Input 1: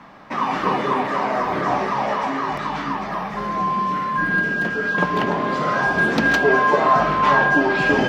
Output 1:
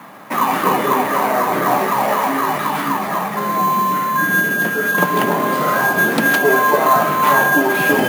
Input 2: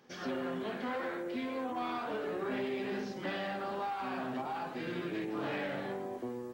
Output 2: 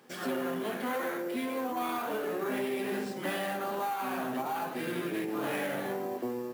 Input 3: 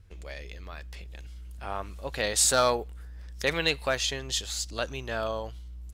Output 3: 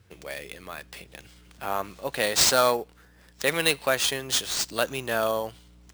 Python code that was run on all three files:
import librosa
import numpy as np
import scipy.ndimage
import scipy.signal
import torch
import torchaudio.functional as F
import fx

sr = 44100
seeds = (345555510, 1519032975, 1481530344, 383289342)

p1 = scipy.signal.sosfilt(scipy.signal.bessel(4, 150.0, 'highpass', norm='mag', fs=sr, output='sos'), x)
p2 = fx.rider(p1, sr, range_db=4, speed_s=0.5)
p3 = p1 + F.gain(torch.from_numpy(p2), -2.0).numpy()
p4 = fx.sample_hold(p3, sr, seeds[0], rate_hz=13000.0, jitter_pct=0)
y = F.gain(torch.from_numpy(p4), -1.0).numpy()